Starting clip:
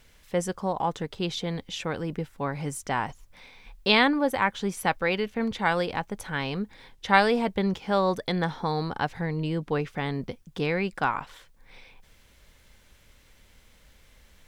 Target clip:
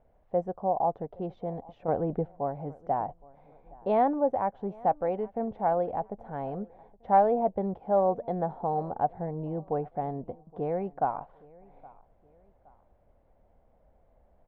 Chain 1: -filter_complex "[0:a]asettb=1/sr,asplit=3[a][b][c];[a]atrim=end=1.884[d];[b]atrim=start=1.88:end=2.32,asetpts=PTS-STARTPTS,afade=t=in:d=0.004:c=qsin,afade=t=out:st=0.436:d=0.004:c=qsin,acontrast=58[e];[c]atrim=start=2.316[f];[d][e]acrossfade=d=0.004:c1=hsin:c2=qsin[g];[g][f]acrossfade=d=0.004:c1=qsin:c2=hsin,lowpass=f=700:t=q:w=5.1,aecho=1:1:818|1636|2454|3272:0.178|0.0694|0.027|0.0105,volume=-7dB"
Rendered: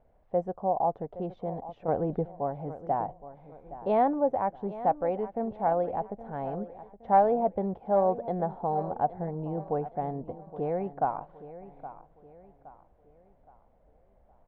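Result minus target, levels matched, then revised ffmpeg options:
echo-to-direct +9 dB
-filter_complex "[0:a]asettb=1/sr,asplit=3[a][b][c];[a]atrim=end=1.884[d];[b]atrim=start=1.88:end=2.32,asetpts=PTS-STARTPTS,afade=t=in:d=0.004:c=qsin,afade=t=out:st=0.436:d=0.004:c=qsin,acontrast=58[e];[c]atrim=start=2.316[f];[d][e]acrossfade=d=0.004:c1=hsin:c2=qsin[g];[g][f]acrossfade=d=0.004:c1=qsin:c2=hsin,lowpass=f=700:t=q:w=5.1,aecho=1:1:818|1636:0.0631|0.0246,volume=-7dB"

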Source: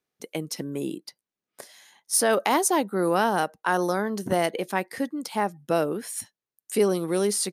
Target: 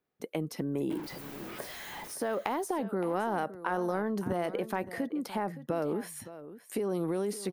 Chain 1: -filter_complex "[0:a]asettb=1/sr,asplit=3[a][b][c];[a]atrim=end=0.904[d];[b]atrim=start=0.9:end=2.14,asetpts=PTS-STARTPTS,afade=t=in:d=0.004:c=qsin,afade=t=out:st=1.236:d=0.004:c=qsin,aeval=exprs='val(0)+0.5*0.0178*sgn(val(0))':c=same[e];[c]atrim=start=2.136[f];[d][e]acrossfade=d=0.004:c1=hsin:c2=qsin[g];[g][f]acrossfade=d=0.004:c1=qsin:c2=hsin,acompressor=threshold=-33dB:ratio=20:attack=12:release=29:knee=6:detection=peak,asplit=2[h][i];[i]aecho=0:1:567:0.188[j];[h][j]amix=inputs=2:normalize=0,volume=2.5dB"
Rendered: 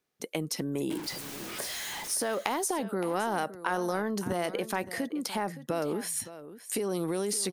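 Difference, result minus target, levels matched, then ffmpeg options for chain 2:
8000 Hz band +10.0 dB
-filter_complex "[0:a]asettb=1/sr,asplit=3[a][b][c];[a]atrim=end=0.904[d];[b]atrim=start=0.9:end=2.14,asetpts=PTS-STARTPTS,afade=t=in:d=0.004:c=qsin,afade=t=out:st=1.236:d=0.004:c=qsin,aeval=exprs='val(0)+0.5*0.0178*sgn(val(0))':c=same[e];[c]atrim=start=2.136[f];[d][e]acrossfade=d=0.004:c1=hsin:c2=qsin[g];[g][f]acrossfade=d=0.004:c1=qsin:c2=hsin,acompressor=threshold=-33dB:ratio=20:attack=12:release=29:knee=6:detection=peak,equalizer=f=7k:t=o:w=2.6:g=-13,asplit=2[h][i];[i]aecho=0:1:567:0.188[j];[h][j]amix=inputs=2:normalize=0,volume=2.5dB"

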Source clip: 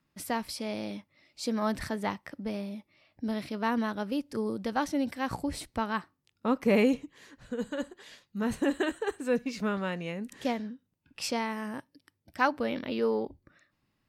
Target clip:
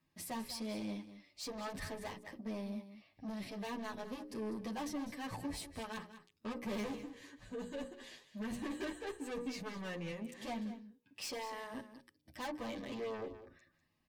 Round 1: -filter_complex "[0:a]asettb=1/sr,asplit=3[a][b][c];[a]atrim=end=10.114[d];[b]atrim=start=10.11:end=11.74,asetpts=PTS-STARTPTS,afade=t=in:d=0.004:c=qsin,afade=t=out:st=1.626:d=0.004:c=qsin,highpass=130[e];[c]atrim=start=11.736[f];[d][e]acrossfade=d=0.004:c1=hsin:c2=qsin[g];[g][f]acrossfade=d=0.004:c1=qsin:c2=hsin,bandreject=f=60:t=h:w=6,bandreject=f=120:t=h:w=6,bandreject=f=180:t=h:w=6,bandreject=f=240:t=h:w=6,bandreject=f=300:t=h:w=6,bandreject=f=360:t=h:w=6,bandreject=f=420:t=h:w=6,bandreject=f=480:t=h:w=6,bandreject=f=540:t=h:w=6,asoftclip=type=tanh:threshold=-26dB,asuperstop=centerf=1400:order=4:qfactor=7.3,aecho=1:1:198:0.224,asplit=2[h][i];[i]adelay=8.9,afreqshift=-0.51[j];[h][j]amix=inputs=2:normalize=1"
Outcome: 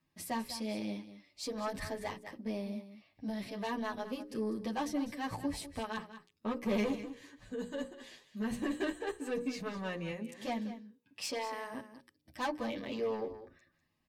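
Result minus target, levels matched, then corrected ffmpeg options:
soft clip: distortion -6 dB
-filter_complex "[0:a]asettb=1/sr,asplit=3[a][b][c];[a]atrim=end=10.114[d];[b]atrim=start=10.11:end=11.74,asetpts=PTS-STARTPTS,afade=t=in:d=0.004:c=qsin,afade=t=out:st=1.626:d=0.004:c=qsin,highpass=130[e];[c]atrim=start=11.736[f];[d][e]acrossfade=d=0.004:c1=hsin:c2=qsin[g];[g][f]acrossfade=d=0.004:c1=qsin:c2=hsin,bandreject=f=60:t=h:w=6,bandreject=f=120:t=h:w=6,bandreject=f=180:t=h:w=6,bandreject=f=240:t=h:w=6,bandreject=f=300:t=h:w=6,bandreject=f=360:t=h:w=6,bandreject=f=420:t=h:w=6,bandreject=f=480:t=h:w=6,bandreject=f=540:t=h:w=6,asoftclip=type=tanh:threshold=-35.5dB,asuperstop=centerf=1400:order=4:qfactor=7.3,aecho=1:1:198:0.224,asplit=2[h][i];[i]adelay=8.9,afreqshift=-0.51[j];[h][j]amix=inputs=2:normalize=1"

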